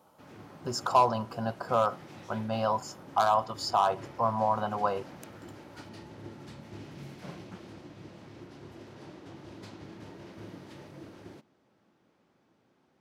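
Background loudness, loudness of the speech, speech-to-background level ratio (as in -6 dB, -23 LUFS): -48.0 LUFS, -29.0 LUFS, 19.0 dB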